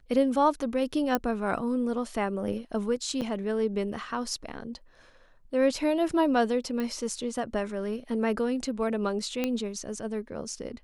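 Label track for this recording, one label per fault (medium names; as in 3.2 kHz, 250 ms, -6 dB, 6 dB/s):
1.150000	1.150000	pop -11 dBFS
3.210000	3.220000	dropout 6.9 ms
6.800000	6.800000	pop -20 dBFS
9.440000	9.440000	pop -14 dBFS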